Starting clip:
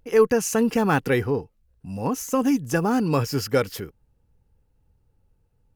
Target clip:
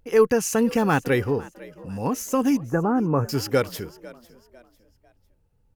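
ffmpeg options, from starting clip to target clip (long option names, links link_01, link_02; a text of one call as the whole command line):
ffmpeg -i in.wav -filter_complex "[0:a]asettb=1/sr,asplit=3[link_01][link_02][link_03];[link_01]atrim=end=2.574[link_04];[link_02]atrim=start=2.57:end=3.29,asetpts=PTS-STARTPTS,afade=type=in:duration=0.004:curve=qsin,afade=type=out:start_time=0.716:duration=0.004:curve=qsin,lowpass=frequency=1500:width=0.5412,lowpass=frequency=1500:width=1.3066[link_05];[link_03]atrim=start=3.286[link_06];[link_04][link_05]acrossfade=duration=0.004:curve1=hsin:curve2=qsin[link_07];[link_07][link_06]acrossfade=duration=0.004:curve1=qsin:curve2=hsin,asplit=4[link_08][link_09][link_10][link_11];[link_09]adelay=500,afreqshift=58,volume=-20.5dB[link_12];[link_10]adelay=1000,afreqshift=116,volume=-30.1dB[link_13];[link_11]adelay=1500,afreqshift=174,volume=-39.8dB[link_14];[link_08][link_12][link_13][link_14]amix=inputs=4:normalize=0" out.wav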